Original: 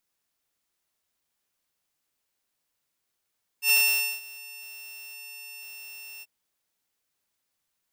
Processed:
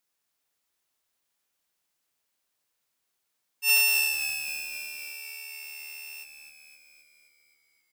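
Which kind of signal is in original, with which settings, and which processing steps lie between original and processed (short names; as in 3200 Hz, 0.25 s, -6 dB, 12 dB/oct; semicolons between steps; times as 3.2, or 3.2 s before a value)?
ADSR saw 2700 Hz, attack 89 ms, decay 0.492 s, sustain -23.5 dB, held 2.60 s, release 37 ms -14.5 dBFS
low shelf 230 Hz -6 dB; on a send: frequency-shifting echo 0.262 s, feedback 62%, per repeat -74 Hz, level -8 dB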